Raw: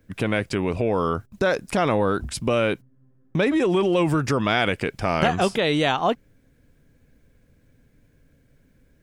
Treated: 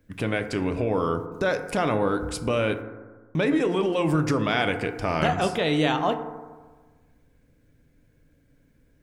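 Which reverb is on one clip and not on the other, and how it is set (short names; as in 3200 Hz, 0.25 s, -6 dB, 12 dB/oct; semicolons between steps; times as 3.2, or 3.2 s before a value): FDN reverb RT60 1.4 s, low-frequency decay 1×, high-frequency decay 0.3×, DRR 7 dB; gain -3.5 dB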